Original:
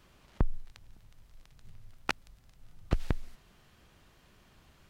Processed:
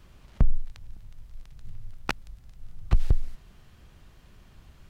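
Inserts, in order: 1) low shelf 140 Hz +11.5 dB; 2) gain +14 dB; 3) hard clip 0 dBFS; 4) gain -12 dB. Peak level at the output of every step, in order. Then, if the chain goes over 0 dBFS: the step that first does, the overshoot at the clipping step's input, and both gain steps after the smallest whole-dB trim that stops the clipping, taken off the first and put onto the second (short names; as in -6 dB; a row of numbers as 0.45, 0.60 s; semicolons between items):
-6.0, +8.0, 0.0, -12.0 dBFS; step 2, 8.0 dB; step 2 +6 dB, step 4 -4 dB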